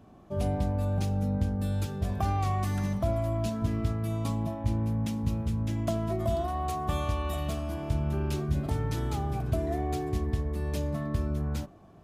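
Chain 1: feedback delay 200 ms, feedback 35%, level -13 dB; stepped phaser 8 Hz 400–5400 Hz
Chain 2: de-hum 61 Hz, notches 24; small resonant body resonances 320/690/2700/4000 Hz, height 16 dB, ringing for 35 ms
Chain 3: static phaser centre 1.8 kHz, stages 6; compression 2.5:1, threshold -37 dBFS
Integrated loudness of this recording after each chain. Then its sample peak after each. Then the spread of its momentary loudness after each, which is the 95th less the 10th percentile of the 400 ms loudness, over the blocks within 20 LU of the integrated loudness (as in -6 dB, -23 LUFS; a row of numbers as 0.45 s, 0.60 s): -32.5 LUFS, -24.0 LUFS, -39.0 LUFS; -16.0 dBFS, -8.0 dBFS, -24.5 dBFS; 3 LU, 7 LU, 2 LU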